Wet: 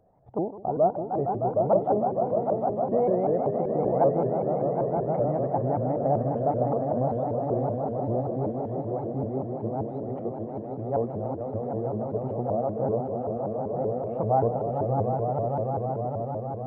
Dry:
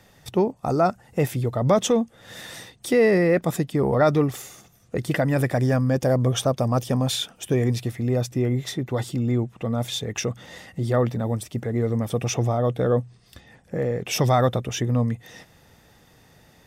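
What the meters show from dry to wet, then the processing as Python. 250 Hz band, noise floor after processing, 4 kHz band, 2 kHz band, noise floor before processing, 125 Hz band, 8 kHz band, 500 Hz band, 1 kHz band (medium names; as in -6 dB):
-5.5 dB, -36 dBFS, under -40 dB, under -20 dB, -56 dBFS, -7.5 dB, under -40 dB, -1.0 dB, +2.0 dB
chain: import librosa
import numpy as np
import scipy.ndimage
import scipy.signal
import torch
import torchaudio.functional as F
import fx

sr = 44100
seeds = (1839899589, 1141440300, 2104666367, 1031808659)

y = fx.ladder_lowpass(x, sr, hz=820.0, resonance_pct=60)
y = fx.echo_swell(y, sr, ms=153, loudest=5, wet_db=-8.0)
y = fx.vibrato_shape(y, sr, shape='saw_up', rate_hz=5.2, depth_cents=250.0)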